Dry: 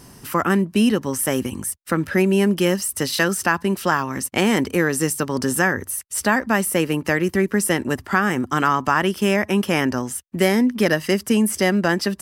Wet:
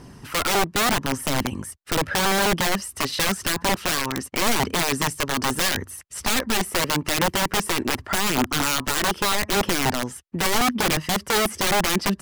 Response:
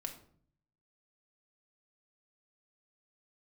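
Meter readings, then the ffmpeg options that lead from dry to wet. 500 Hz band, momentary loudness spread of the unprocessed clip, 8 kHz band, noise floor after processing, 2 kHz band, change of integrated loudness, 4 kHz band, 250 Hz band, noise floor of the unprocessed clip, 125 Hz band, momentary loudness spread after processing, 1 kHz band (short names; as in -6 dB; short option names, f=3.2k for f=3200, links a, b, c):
-5.5 dB, 5 LU, +1.0 dB, -47 dBFS, -2.0 dB, -2.5 dB, +5.5 dB, -8.0 dB, -47 dBFS, -5.0 dB, 6 LU, -0.5 dB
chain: -af "aemphasis=mode=reproduction:type=50fm,aeval=exprs='(mod(5.96*val(0)+1,2)-1)/5.96':c=same,aphaser=in_gain=1:out_gain=1:delay=2.8:decay=0.26:speed=0.83:type=triangular"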